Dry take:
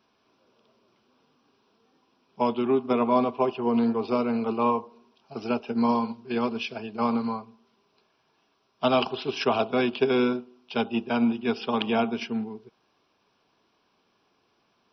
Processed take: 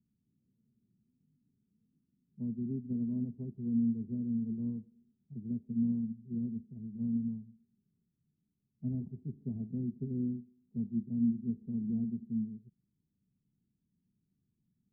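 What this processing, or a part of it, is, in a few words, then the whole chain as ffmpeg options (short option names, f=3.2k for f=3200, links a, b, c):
the neighbour's flat through the wall: -af "lowpass=f=190:w=0.5412,lowpass=f=190:w=1.3066,equalizer=f=170:t=o:w=0.93:g=4"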